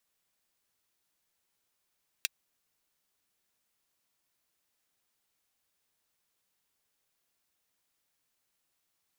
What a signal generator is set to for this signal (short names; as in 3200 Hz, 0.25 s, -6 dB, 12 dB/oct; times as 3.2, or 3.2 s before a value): closed hi-hat, high-pass 2400 Hz, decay 0.03 s